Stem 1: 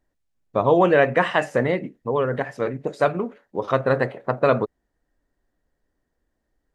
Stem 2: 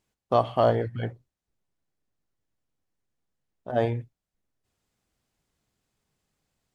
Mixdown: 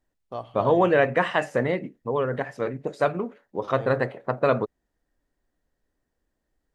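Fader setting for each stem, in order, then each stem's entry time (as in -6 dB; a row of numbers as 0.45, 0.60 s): -3.0, -12.5 dB; 0.00, 0.00 s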